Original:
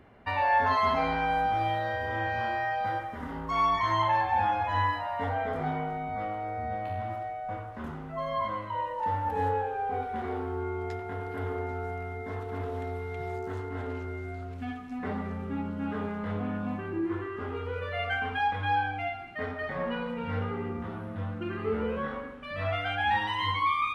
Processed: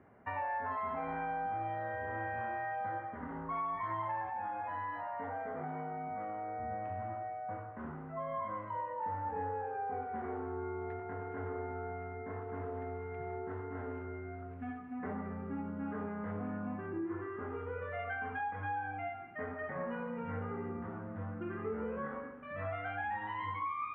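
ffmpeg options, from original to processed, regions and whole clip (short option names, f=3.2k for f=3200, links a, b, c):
-filter_complex "[0:a]asettb=1/sr,asplit=3[a][b][c];[a]atrim=end=4.294[d];[b]atrim=start=4.29:end=6.6,asetpts=PTS-STARTPTS,afade=t=in:d=0.004:c=qsin,afade=t=out:st=2.306:d=0.004:c=qsin,highpass=130,acompressor=threshold=-31dB:ratio=3:attack=3.2:release=140:knee=1:detection=peak[e];[c]atrim=start=6.596[f];[d][e]acrossfade=d=0.004:c1=hsin:c2=qsin[g];[g][f]acrossfade=d=0.004:c1=qsin:c2=hsin,highpass=92,acompressor=threshold=-29dB:ratio=6,lowpass=f=2k:w=0.5412,lowpass=f=2k:w=1.3066,volume=-5dB"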